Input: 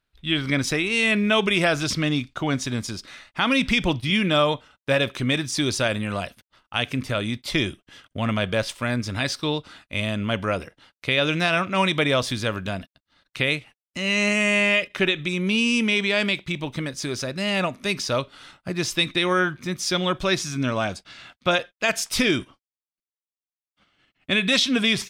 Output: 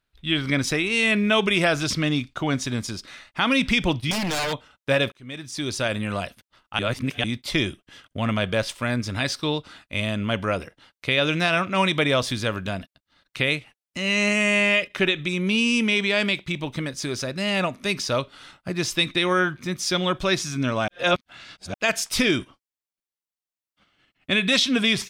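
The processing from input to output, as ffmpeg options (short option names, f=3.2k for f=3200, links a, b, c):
-filter_complex "[0:a]asettb=1/sr,asplit=3[a][b][c];[a]atrim=end=4.114[d];[b]atrim=start=4.11:end=4.53,asetpts=PTS-STARTPTS,afade=t=in:d=0.004:c=qsin,afade=t=out:st=0.416:d=0.004:c=qsin,aeval=exprs='0.0944*(abs(mod(val(0)/0.0944+3,4)-2)-1)':c=same[e];[c]atrim=start=4.526[f];[d][e]acrossfade=d=0.004:c1=hsin:c2=qsin[g];[g][f]acrossfade=d=0.004:c1=qsin:c2=hsin,asplit=6[h][i][j][k][l][m];[h]atrim=end=5.12,asetpts=PTS-STARTPTS,afade=t=out:st=5.116:d=0.004:c=hsin[n];[i]atrim=start=5.12:end=6.792,asetpts=PTS-STARTPTS,afade=t=in:d=0.93[o];[j]atrim=start=6.788:end=7.242,asetpts=PTS-STARTPTS,areverse[p];[k]atrim=start=7.238:end=20.882[q];[l]atrim=start=20.878:end=21.742,asetpts=PTS-STARTPTS,areverse[r];[m]atrim=start=21.738[s];[n][o]concat=n=2:v=0:a=1[t];[t][p]acrossfade=d=0.004:c1=hsin:c2=hsin[u];[u][q]acrossfade=d=0.004:c1=hsin:c2=hsin[v];[v][r]acrossfade=d=0.004:c1=hsin:c2=hsin[w];[w][s]acrossfade=d=0.004:c1=hsin:c2=hsin"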